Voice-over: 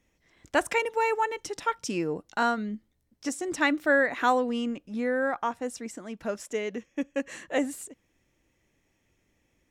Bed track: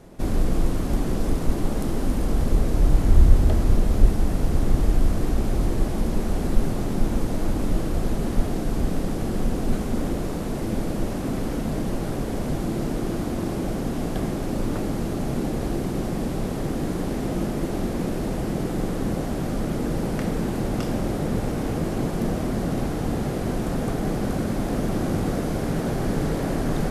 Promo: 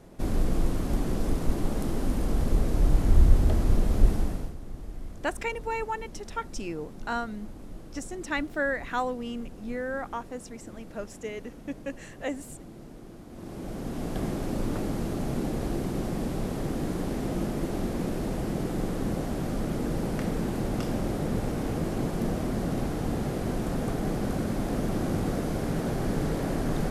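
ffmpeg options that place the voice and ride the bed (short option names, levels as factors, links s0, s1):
-filter_complex "[0:a]adelay=4700,volume=0.531[s0];[1:a]volume=3.76,afade=t=out:st=4.15:d=0.4:silence=0.16788,afade=t=in:st=13.28:d=1:silence=0.16788[s1];[s0][s1]amix=inputs=2:normalize=0"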